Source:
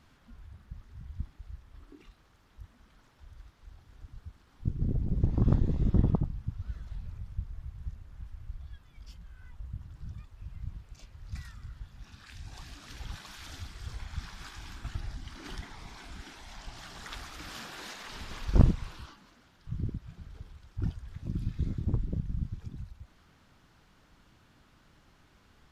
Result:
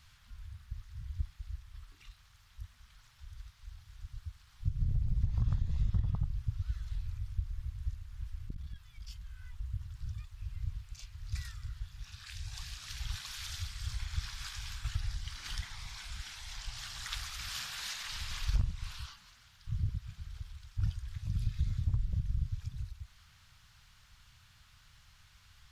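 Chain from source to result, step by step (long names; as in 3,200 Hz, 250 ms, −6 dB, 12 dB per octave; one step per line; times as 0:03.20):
drawn EQ curve 110 Hz 0 dB, 310 Hz −26 dB, 1,100 Hz −5 dB, 2,500 Hz +1 dB, 4,300 Hz +4 dB
downward compressor 8 to 1, threshold −28 dBFS, peak gain reduction 14 dB
0:08.46–0:09.16: saturating transformer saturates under 120 Hz
level +2.5 dB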